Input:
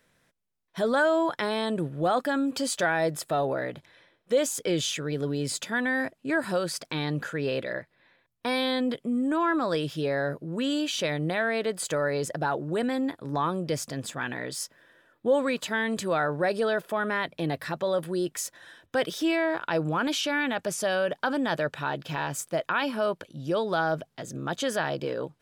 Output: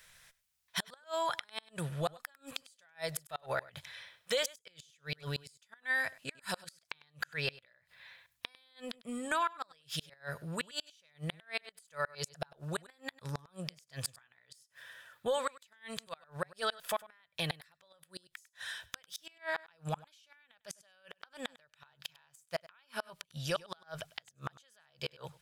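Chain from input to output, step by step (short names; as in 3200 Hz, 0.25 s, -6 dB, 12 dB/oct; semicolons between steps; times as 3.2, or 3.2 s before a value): passive tone stack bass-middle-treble 10-0-10; compressor 4:1, threshold -42 dBFS, peak gain reduction 12 dB; flipped gate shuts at -34 dBFS, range -34 dB; on a send: echo 0.1 s -21 dB; on the sum: gain +12.5 dB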